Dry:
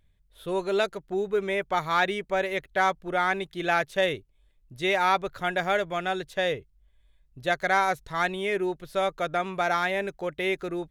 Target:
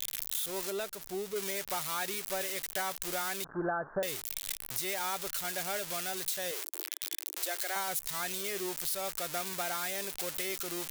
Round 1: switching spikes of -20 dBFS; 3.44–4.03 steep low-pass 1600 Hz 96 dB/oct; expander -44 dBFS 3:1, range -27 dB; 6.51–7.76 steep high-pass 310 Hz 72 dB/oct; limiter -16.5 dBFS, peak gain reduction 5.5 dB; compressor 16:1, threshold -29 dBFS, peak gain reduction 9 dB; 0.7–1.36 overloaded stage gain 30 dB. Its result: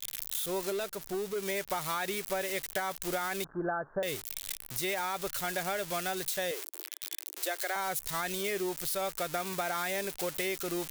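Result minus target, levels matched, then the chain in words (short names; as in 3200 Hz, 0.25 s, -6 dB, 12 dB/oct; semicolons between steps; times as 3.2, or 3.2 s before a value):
switching spikes: distortion -8 dB
switching spikes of -12 dBFS; 3.44–4.03 steep low-pass 1600 Hz 96 dB/oct; expander -44 dBFS 3:1, range -27 dB; 6.51–7.76 steep high-pass 310 Hz 72 dB/oct; limiter -16.5 dBFS, peak gain reduction 8.5 dB; compressor 16:1, threshold -29 dBFS, peak gain reduction 11 dB; 0.7–1.36 overloaded stage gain 30 dB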